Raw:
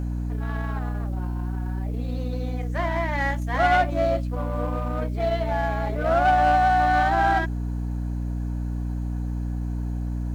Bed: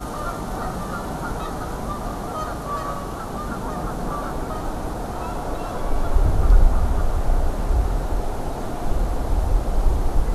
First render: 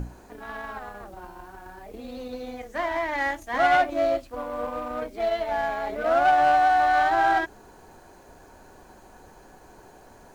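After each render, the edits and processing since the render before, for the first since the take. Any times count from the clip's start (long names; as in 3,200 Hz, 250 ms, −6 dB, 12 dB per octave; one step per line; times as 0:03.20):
mains-hum notches 60/120/180/240/300 Hz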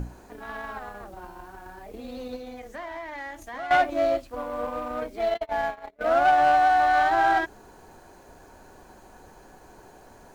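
0:02.36–0:03.71: downward compressor 3 to 1, threshold −36 dBFS
0:05.34–0:06.01: noise gate −28 dBFS, range −34 dB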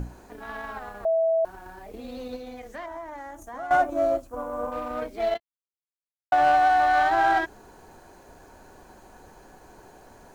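0:01.05–0:01.45: beep over 654 Hz −19 dBFS
0:02.86–0:04.72: flat-topped bell 3,000 Hz −11.5 dB
0:05.40–0:06.32: silence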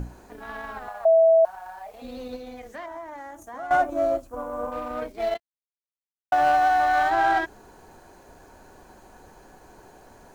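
0:00.88–0:02.02: low shelf with overshoot 480 Hz −12.5 dB, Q 3
0:02.69–0:03.64: high-pass filter 100 Hz 6 dB per octave
0:05.12–0:07.11: mu-law and A-law mismatch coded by A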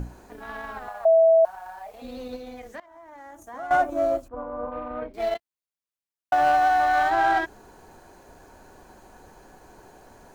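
0:02.80–0:03.60: fade in, from −20.5 dB
0:04.28–0:05.14: high-frequency loss of the air 460 metres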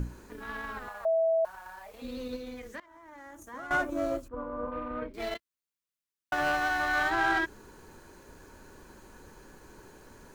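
parametric band 720 Hz −14.5 dB 0.42 octaves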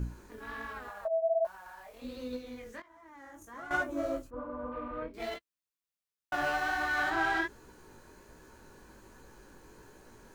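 chorus effect 1.3 Hz, delay 15.5 ms, depth 7.1 ms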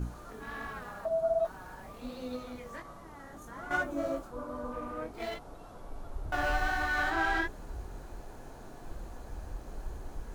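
mix in bed −21.5 dB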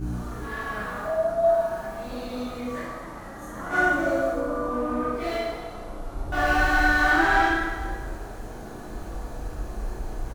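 double-tracking delay 33 ms −6 dB
dense smooth reverb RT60 1.7 s, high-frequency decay 0.8×, DRR −8 dB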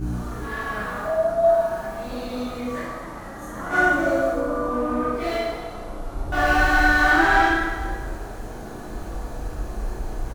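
level +3 dB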